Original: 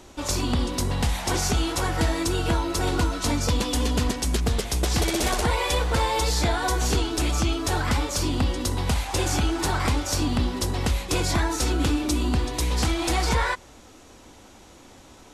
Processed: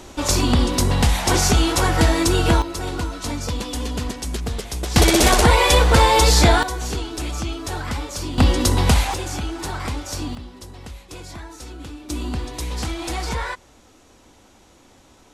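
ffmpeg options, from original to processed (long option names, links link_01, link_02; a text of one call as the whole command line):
ffmpeg -i in.wav -af "asetnsamples=nb_out_samples=441:pad=0,asendcmd='2.62 volume volume -2.5dB;4.96 volume volume 9.5dB;6.63 volume volume -3dB;8.38 volume volume 8.5dB;9.14 volume volume -3.5dB;10.35 volume volume -13dB;12.1 volume volume -3dB',volume=7dB" out.wav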